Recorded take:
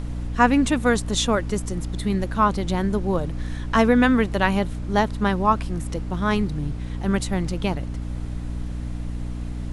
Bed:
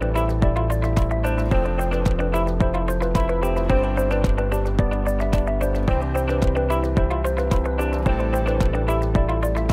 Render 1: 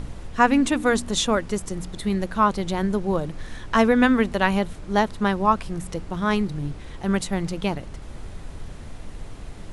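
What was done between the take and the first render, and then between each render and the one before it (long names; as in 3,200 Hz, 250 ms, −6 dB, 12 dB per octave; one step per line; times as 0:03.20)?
hum removal 60 Hz, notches 5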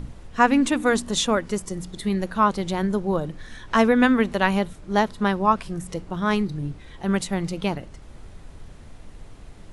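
noise reduction from a noise print 6 dB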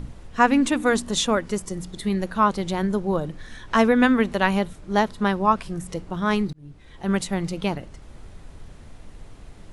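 0:06.53–0:07.11: fade in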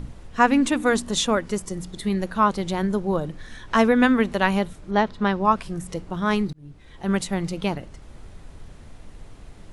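0:04.90–0:05.43: low-pass filter 3,500 Hz → 6,800 Hz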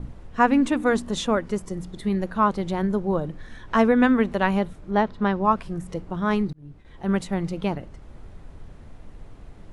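noise gate with hold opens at −39 dBFS
high-shelf EQ 2,700 Hz −10 dB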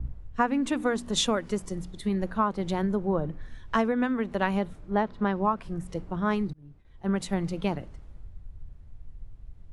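downward compressor 12 to 1, threshold −22 dBFS, peak gain reduction 11 dB
multiband upward and downward expander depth 70%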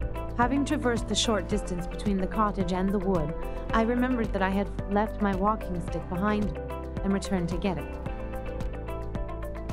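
mix in bed −14.5 dB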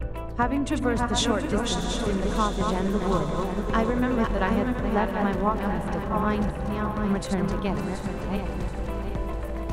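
feedback delay that plays each chunk backwards 364 ms, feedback 59%, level −4.5 dB
feedback delay with all-pass diffusion 706 ms, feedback 45%, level −9.5 dB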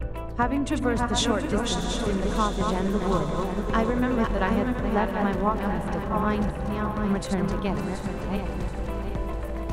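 no processing that can be heard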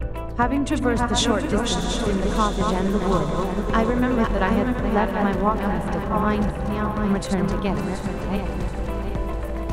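level +3.5 dB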